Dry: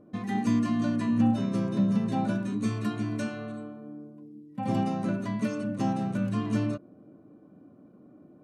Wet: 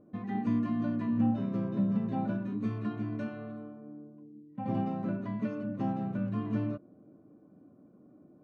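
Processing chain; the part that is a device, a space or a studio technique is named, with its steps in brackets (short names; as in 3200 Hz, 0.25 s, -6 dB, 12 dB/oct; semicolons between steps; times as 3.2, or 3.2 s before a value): phone in a pocket (LPF 3400 Hz 12 dB/oct; high shelf 2200 Hz -9.5 dB); gain -4 dB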